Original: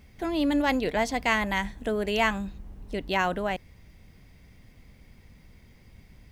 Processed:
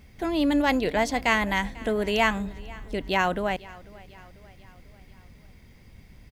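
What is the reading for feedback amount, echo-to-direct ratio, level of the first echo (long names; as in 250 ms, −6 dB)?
53%, −20.0 dB, −21.5 dB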